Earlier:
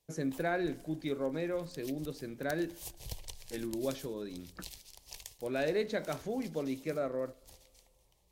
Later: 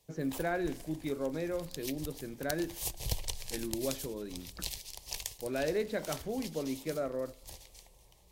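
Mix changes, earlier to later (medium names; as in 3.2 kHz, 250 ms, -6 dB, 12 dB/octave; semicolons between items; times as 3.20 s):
speech: add distance through air 140 m; background +8.5 dB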